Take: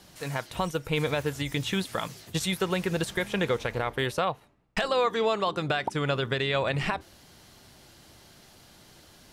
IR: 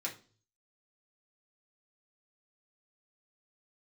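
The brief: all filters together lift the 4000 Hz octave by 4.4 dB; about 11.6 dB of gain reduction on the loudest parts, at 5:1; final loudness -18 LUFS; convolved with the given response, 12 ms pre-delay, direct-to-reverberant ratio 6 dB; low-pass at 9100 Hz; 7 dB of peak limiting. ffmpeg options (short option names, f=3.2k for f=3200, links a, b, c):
-filter_complex "[0:a]lowpass=9.1k,equalizer=f=4k:t=o:g=5.5,acompressor=threshold=-35dB:ratio=5,alimiter=level_in=4dB:limit=-24dB:level=0:latency=1,volume=-4dB,asplit=2[a][b];[1:a]atrim=start_sample=2205,adelay=12[c];[b][c]afir=irnorm=-1:irlink=0,volume=-7.5dB[d];[a][d]amix=inputs=2:normalize=0,volume=22dB"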